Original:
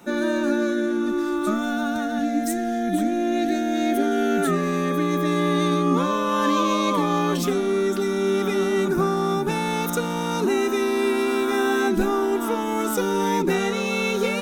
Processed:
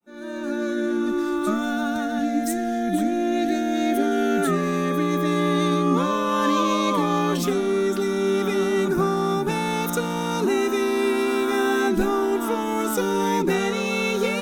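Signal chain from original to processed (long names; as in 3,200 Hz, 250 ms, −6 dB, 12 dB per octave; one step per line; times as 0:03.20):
fade in at the beginning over 0.93 s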